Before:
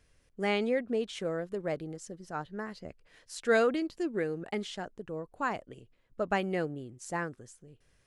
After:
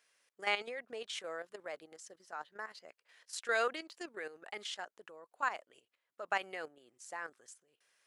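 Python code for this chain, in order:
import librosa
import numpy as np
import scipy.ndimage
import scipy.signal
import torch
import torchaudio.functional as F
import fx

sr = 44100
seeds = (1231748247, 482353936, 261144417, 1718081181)

y = scipy.signal.sosfilt(scipy.signal.butter(2, 830.0, 'highpass', fs=sr, output='sos'), x)
y = fx.level_steps(y, sr, step_db=11)
y = F.gain(torch.from_numpy(y), 2.5).numpy()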